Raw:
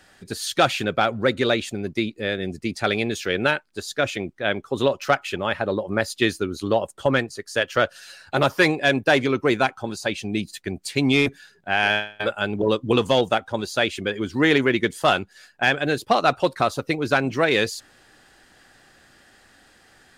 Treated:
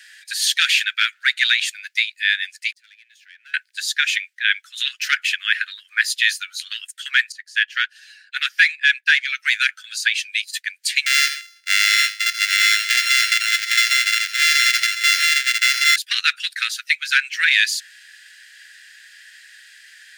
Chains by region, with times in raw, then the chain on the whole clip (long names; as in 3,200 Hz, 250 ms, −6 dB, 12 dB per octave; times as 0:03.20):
0:02.72–0:03.54: leveller curve on the samples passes 2 + gate with flip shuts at −23 dBFS, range −40 dB + multiband upward and downward compressor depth 70%
0:07.32–0:09.28: high-shelf EQ 6,100 Hz −9.5 dB + expander for the loud parts, over −35 dBFS
0:11.06–0:15.96: samples sorted by size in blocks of 64 samples + parametric band 13,000 Hz −11 dB 0.66 octaves + multi-tap delay 84/135/806 ms −10.5/−17/−3.5 dB
whole clip: Butterworth high-pass 1,600 Hz 72 dB per octave; high-shelf EQ 3,200 Hz −5 dB; boost into a limiter +16.5 dB; level −3 dB